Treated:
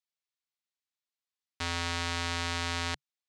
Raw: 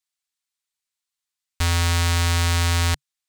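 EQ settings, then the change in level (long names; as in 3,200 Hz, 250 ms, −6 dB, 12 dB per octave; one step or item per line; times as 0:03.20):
band-pass filter 160–5,800 Hz
−7.5 dB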